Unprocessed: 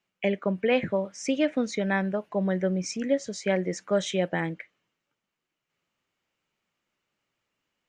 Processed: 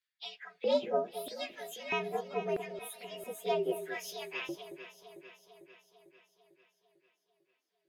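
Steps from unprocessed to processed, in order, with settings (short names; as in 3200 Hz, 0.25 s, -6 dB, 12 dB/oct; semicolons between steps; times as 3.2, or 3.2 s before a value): inharmonic rescaling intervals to 119%; LFO high-pass square 0.78 Hz 370–1800 Hz; echo with dull and thin repeats by turns 0.224 s, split 920 Hz, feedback 76%, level -10 dB; gain -6 dB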